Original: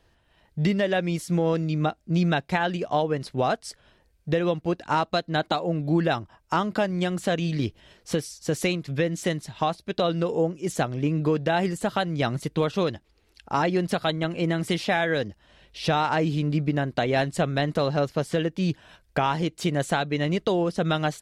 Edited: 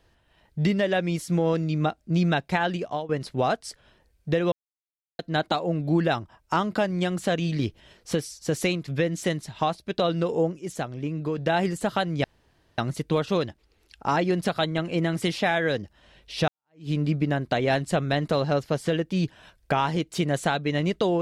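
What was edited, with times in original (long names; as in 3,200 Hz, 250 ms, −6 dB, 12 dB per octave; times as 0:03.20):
0:02.75–0:03.09: fade out, to −14 dB
0:04.52–0:05.19: silence
0:10.59–0:11.38: clip gain −5.5 dB
0:12.24: splice in room tone 0.54 s
0:15.94–0:16.36: fade in exponential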